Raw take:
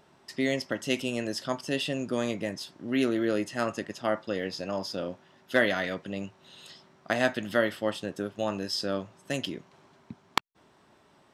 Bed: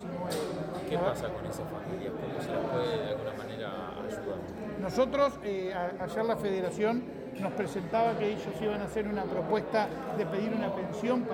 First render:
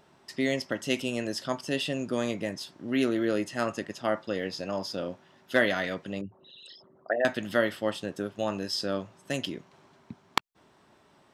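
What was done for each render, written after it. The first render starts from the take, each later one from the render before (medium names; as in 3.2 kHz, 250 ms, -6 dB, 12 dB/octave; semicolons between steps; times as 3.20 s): 6.21–7.25 s: resonances exaggerated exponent 3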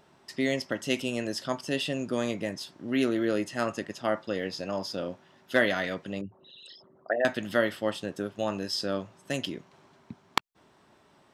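no audible change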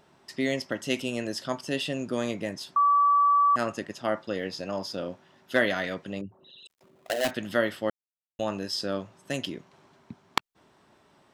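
2.76–3.56 s: bleep 1.15 kHz -17.5 dBFS; 6.67–7.31 s: dead-time distortion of 0.22 ms; 7.90–8.39 s: mute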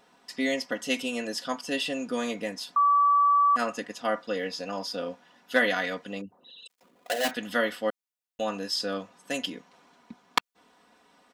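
bass shelf 220 Hz -11 dB; comb 4.1 ms, depth 80%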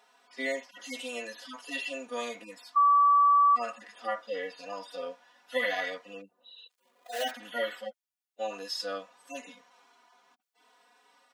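harmonic-percussive separation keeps harmonic; high-pass 510 Hz 12 dB/octave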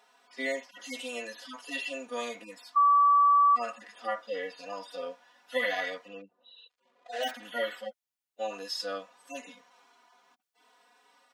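6.08–7.23 s: distance through air 110 m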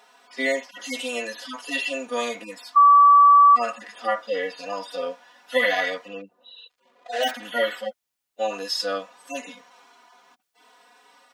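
trim +8.5 dB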